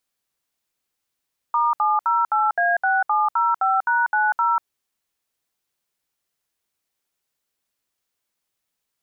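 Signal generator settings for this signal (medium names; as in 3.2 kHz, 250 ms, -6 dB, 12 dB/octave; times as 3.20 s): DTMF "*708A6705#90", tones 192 ms, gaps 67 ms, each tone -19 dBFS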